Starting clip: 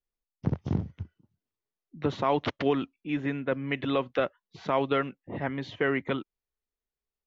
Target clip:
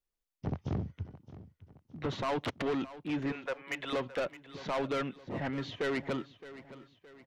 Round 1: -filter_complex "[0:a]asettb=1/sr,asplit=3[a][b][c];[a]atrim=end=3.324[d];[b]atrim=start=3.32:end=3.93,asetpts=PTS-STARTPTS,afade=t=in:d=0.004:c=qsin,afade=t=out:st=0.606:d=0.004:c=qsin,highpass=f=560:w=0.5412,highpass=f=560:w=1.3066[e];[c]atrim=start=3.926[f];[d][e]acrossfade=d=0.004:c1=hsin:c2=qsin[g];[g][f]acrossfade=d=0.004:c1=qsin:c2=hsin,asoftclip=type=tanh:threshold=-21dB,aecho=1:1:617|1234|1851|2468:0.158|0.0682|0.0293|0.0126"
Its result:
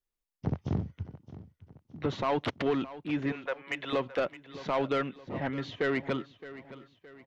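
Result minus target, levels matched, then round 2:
soft clip: distortion -6 dB
-filter_complex "[0:a]asettb=1/sr,asplit=3[a][b][c];[a]atrim=end=3.324[d];[b]atrim=start=3.32:end=3.93,asetpts=PTS-STARTPTS,afade=t=in:d=0.004:c=qsin,afade=t=out:st=0.606:d=0.004:c=qsin,highpass=f=560:w=0.5412,highpass=f=560:w=1.3066[e];[c]atrim=start=3.926[f];[d][e]acrossfade=d=0.004:c1=hsin:c2=qsin[g];[g][f]acrossfade=d=0.004:c1=qsin:c2=hsin,asoftclip=type=tanh:threshold=-28dB,aecho=1:1:617|1234|1851|2468:0.158|0.0682|0.0293|0.0126"

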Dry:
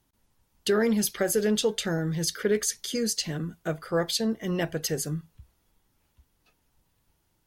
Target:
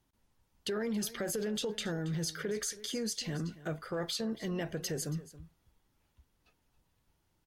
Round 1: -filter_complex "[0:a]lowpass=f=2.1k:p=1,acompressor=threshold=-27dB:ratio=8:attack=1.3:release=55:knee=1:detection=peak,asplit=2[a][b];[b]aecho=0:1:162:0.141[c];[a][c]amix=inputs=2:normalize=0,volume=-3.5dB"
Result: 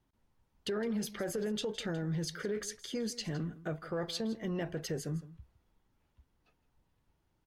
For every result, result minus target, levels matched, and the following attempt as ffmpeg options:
echo 0.115 s early; 8000 Hz band -4.5 dB
-filter_complex "[0:a]lowpass=f=2.1k:p=1,acompressor=threshold=-27dB:ratio=8:attack=1.3:release=55:knee=1:detection=peak,asplit=2[a][b];[b]aecho=0:1:277:0.141[c];[a][c]amix=inputs=2:normalize=0,volume=-3.5dB"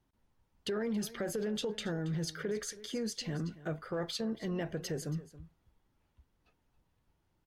8000 Hz band -4.5 dB
-filter_complex "[0:a]lowpass=f=7k:p=1,acompressor=threshold=-27dB:ratio=8:attack=1.3:release=55:knee=1:detection=peak,asplit=2[a][b];[b]aecho=0:1:277:0.141[c];[a][c]amix=inputs=2:normalize=0,volume=-3.5dB"

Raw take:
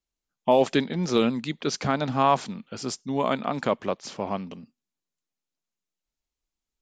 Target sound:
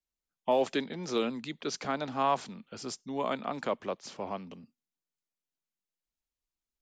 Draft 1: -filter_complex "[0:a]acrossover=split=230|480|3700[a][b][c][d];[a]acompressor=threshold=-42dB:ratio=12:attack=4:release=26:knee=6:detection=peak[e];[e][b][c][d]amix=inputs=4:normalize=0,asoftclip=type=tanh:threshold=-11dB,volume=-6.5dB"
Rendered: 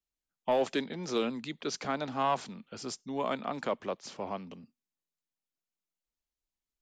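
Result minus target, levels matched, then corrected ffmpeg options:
soft clip: distortion +14 dB
-filter_complex "[0:a]acrossover=split=230|480|3700[a][b][c][d];[a]acompressor=threshold=-42dB:ratio=12:attack=4:release=26:knee=6:detection=peak[e];[e][b][c][d]amix=inputs=4:normalize=0,asoftclip=type=tanh:threshold=-2.5dB,volume=-6.5dB"

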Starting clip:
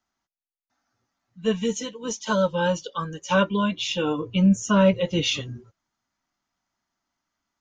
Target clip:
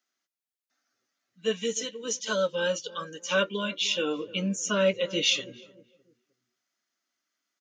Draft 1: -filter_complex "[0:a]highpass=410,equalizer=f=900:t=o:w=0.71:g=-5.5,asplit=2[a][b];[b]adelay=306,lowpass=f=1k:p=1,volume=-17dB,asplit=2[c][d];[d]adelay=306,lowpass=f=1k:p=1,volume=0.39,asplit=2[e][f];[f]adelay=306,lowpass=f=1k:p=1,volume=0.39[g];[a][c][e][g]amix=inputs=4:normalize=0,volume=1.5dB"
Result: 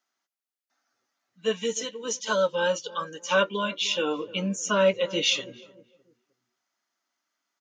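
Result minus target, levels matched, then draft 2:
1000 Hz band +4.5 dB
-filter_complex "[0:a]highpass=410,equalizer=f=900:t=o:w=0.71:g=-16,asplit=2[a][b];[b]adelay=306,lowpass=f=1k:p=1,volume=-17dB,asplit=2[c][d];[d]adelay=306,lowpass=f=1k:p=1,volume=0.39,asplit=2[e][f];[f]adelay=306,lowpass=f=1k:p=1,volume=0.39[g];[a][c][e][g]amix=inputs=4:normalize=0,volume=1.5dB"

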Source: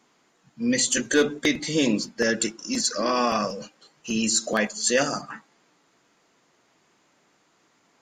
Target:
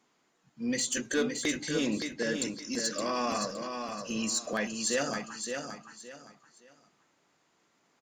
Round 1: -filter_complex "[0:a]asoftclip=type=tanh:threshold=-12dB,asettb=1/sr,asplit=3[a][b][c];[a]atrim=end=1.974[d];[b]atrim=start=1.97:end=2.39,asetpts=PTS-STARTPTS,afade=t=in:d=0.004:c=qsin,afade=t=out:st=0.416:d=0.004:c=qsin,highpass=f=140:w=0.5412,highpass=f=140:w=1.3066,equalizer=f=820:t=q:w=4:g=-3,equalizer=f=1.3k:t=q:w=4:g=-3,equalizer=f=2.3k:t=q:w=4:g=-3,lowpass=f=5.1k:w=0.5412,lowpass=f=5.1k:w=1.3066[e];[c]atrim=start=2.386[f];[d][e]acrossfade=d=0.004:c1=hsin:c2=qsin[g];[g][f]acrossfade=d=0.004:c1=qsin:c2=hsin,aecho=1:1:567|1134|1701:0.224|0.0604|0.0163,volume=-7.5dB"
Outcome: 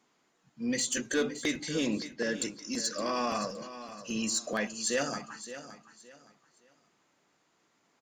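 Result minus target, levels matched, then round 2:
echo-to-direct -7 dB
-filter_complex "[0:a]asoftclip=type=tanh:threshold=-12dB,asettb=1/sr,asplit=3[a][b][c];[a]atrim=end=1.974[d];[b]atrim=start=1.97:end=2.39,asetpts=PTS-STARTPTS,afade=t=in:d=0.004:c=qsin,afade=t=out:st=0.416:d=0.004:c=qsin,highpass=f=140:w=0.5412,highpass=f=140:w=1.3066,equalizer=f=820:t=q:w=4:g=-3,equalizer=f=1.3k:t=q:w=4:g=-3,equalizer=f=2.3k:t=q:w=4:g=-3,lowpass=f=5.1k:w=0.5412,lowpass=f=5.1k:w=1.3066[e];[c]atrim=start=2.386[f];[d][e]acrossfade=d=0.004:c1=hsin:c2=qsin[g];[g][f]acrossfade=d=0.004:c1=qsin:c2=hsin,aecho=1:1:567|1134|1701:0.501|0.135|0.0365,volume=-7.5dB"

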